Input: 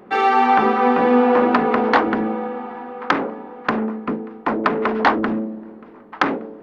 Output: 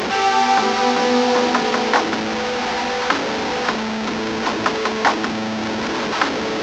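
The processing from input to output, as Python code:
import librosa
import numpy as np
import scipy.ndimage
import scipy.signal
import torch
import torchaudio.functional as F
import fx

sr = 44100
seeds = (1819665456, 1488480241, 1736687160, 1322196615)

y = fx.delta_mod(x, sr, bps=32000, step_db=-14.0)
y = scipy.signal.sosfilt(scipy.signal.butter(2, 55.0, 'highpass', fs=sr, output='sos'), y)
y = fx.low_shelf(y, sr, hz=310.0, db=-6.0)
y = fx.notch(y, sr, hz=1200.0, q=18.0)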